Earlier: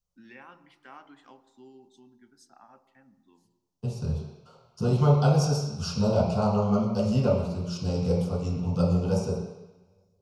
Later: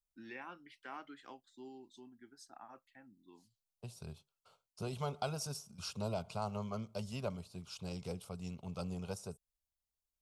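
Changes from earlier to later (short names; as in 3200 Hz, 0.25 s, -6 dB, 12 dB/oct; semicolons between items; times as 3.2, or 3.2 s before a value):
second voice -5.5 dB; reverb: off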